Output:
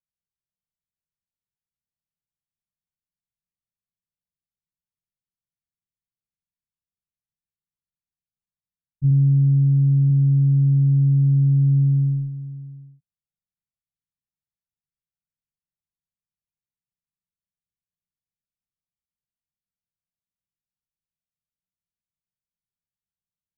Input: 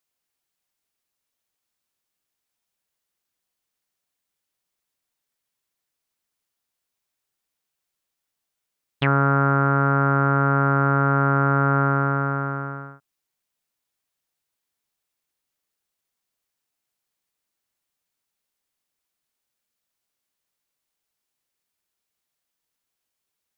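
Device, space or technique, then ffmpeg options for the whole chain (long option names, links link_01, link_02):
the neighbour's flat through the wall: -filter_complex "[0:a]agate=range=-9dB:threshold=-21dB:ratio=16:detection=peak,asettb=1/sr,asplit=3[link_01][link_02][link_03];[link_01]atrim=end=9.104[link_04];[link_02]atrim=start=9.1:end=10.1,asetpts=PTS-STARTPTS,afade=type=in:duration=0.004:curve=qsin,afade=type=out:start_time=0.996:duration=0.004:curve=qsin,lowpass=frequency=1000:width=0.5412,lowpass=frequency=1000:width=1.3066[link_05];[link_03]atrim=start=10.096[link_06];[link_04][link_05]acrossfade=duration=0.004:curve1=hsin:curve2=qsin[link_07];[link_07][link_06]acrossfade=duration=0.004:curve1=qsin:curve2=hsin,lowpass=frequency=170:width=0.5412,lowpass=frequency=170:width=1.3066,equalizer=frequency=180:width_type=o:width=0.49:gain=6,volume=6dB"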